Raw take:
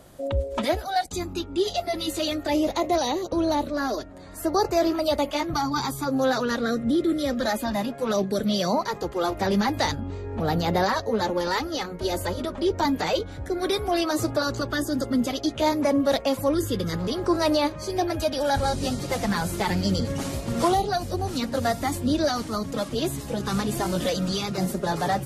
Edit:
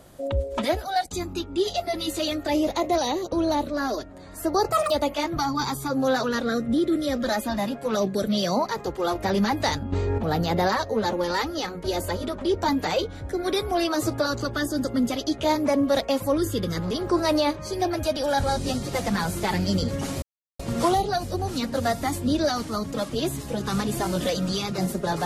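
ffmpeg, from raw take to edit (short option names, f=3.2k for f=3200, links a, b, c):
-filter_complex "[0:a]asplit=6[a][b][c][d][e][f];[a]atrim=end=4.724[g];[b]atrim=start=4.72:end=5.07,asetpts=PTS-STARTPTS,asetrate=84231,aresample=44100,atrim=end_sample=8081,asetpts=PTS-STARTPTS[h];[c]atrim=start=5.066:end=10.092[i];[d]atrim=start=10.088:end=10.352,asetpts=PTS-STARTPTS,volume=9dB[j];[e]atrim=start=10.348:end=20.39,asetpts=PTS-STARTPTS,afade=t=out:st=10.038:d=0.004:c=hsin,apad=pad_dur=0.37[k];[f]atrim=start=20.39,asetpts=PTS-STARTPTS,afade=t=in:d=0.004:c=hsin[l];[g][h]acrossfade=d=0.004:c1=hsin:c2=hsin[m];[m][i]acrossfade=d=0.004:c1=hsin:c2=hsin[n];[n][j]acrossfade=d=0.004:c1=hsin:c2=hsin[o];[k][l]concat=n=2:v=0:a=1[p];[o][p]acrossfade=d=0.004:c1=hsin:c2=hsin"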